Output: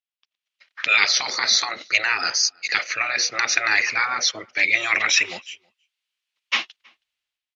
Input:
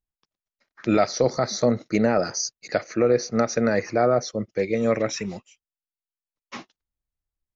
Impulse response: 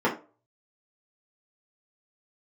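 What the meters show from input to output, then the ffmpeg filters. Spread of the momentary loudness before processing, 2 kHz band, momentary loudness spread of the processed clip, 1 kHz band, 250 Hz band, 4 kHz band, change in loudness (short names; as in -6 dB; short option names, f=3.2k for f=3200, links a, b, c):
13 LU, +15.0 dB, 7 LU, +1.0 dB, -20.0 dB, +14.5 dB, +3.5 dB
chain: -filter_complex "[0:a]afftfilt=real='re*lt(hypot(re,im),0.2)':imag='im*lt(hypot(re,im),0.2)':win_size=1024:overlap=0.75,dynaudnorm=f=140:g=7:m=17dB,bandpass=f=2.9k:t=q:w=2.2:csg=0,asplit=2[a][b];[b]adelay=320.7,volume=-29dB,highshelf=f=4k:g=-7.22[c];[a][c]amix=inputs=2:normalize=0,volume=7dB"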